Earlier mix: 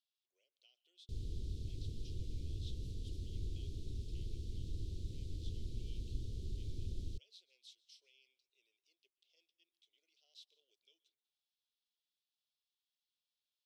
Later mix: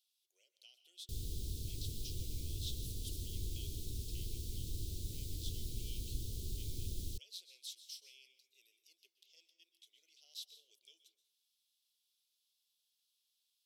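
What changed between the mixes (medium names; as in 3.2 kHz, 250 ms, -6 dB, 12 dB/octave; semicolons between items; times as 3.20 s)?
speech: send +11.0 dB; master: remove tape spacing loss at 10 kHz 21 dB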